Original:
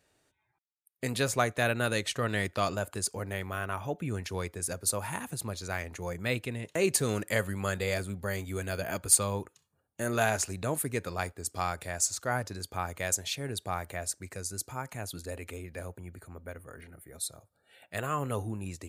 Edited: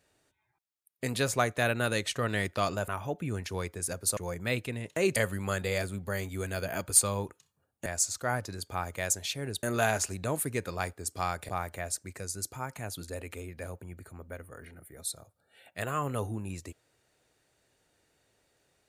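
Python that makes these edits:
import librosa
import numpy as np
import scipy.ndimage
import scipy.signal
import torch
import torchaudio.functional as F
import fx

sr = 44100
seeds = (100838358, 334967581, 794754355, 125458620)

y = fx.edit(x, sr, fx.cut(start_s=2.88, length_s=0.8),
    fx.cut(start_s=4.97, length_s=0.99),
    fx.cut(start_s=6.95, length_s=0.37),
    fx.move(start_s=11.88, length_s=1.77, to_s=10.02), tone=tone)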